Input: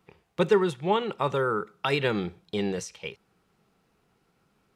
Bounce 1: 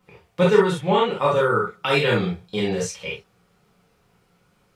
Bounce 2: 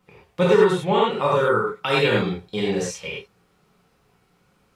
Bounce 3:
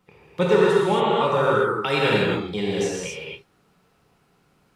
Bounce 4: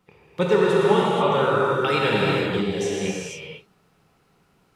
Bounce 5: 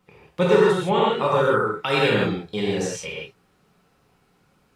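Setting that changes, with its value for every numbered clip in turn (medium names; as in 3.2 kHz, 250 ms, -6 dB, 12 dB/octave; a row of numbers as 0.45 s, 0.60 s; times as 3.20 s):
gated-style reverb, gate: 90 ms, 130 ms, 300 ms, 520 ms, 190 ms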